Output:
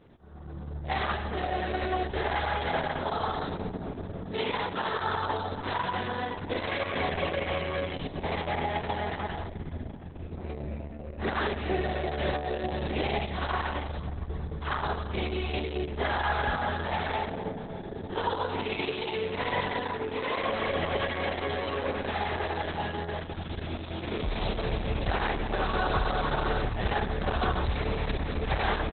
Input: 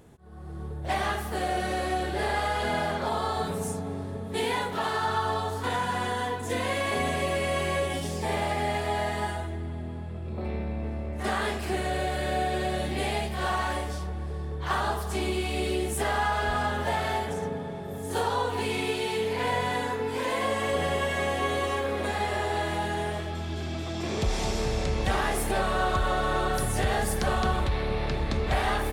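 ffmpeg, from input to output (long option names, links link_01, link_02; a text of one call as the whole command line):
ffmpeg -i in.wav -filter_complex "[0:a]asplit=3[link_01][link_02][link_03];[link_01]afade=type=out:start_time=10.98:duration=0.02[link_04];[link_02]equalizer=frequency=360:width_type=o:width=1.7:gain=3.5,afade=type=in:start_time=10.98:duration=0.02,afade=type=out:start_time=13.2:duration=0.02[link_05];[link_03]afade=type=in:start_time=13.2:duration=0.02[link_06];[link_04][link_05][link_06]amix=inputs=3:normalize=0,aecho=1:1:135|270|405:0.15|0.0449|0.0135,volume=-1.5dB" -ar 48000 -c:a libopus -b:a 6k out.opus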